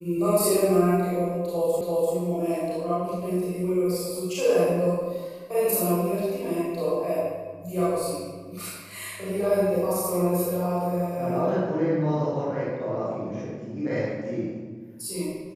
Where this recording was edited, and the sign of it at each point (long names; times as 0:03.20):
0:01.81: the same again, the last 0.34 s